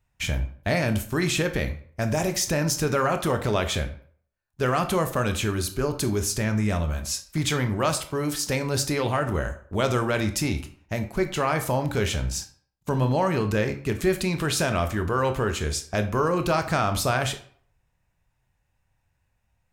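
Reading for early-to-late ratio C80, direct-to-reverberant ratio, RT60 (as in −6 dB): 15.5 dB, 7.0 dB, 0.55 s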